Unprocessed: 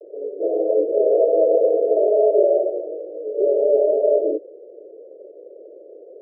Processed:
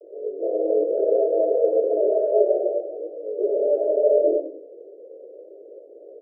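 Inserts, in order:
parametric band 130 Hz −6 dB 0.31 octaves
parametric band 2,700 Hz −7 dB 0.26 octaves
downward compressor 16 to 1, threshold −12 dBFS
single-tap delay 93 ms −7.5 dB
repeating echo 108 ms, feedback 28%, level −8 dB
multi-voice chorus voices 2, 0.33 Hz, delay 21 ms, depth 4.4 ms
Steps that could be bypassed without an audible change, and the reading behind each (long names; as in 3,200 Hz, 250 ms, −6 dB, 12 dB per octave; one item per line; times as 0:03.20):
parametric band 130 Hz: nothing at its input below 270 Hz
parametric band 2,700 Hz: nothing at its input above 760 Hz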